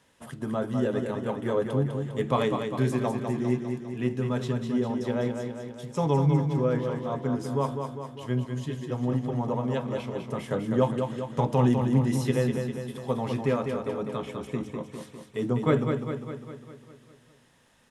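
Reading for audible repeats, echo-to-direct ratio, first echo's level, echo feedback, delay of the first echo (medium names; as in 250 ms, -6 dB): 7, -4.0 dB, -6.0 dB, 58%, 201 ms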